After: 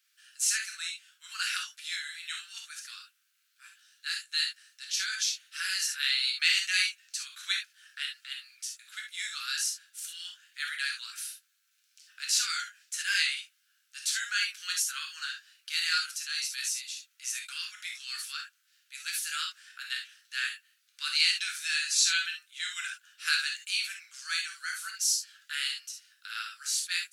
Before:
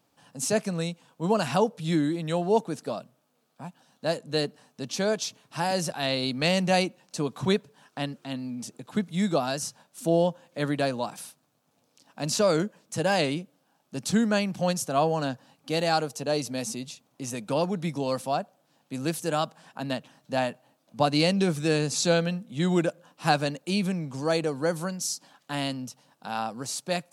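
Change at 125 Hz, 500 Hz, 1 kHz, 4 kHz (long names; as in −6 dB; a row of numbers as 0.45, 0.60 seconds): below −40 dB, below −40 dB, −15.0 dB, +4.0 dB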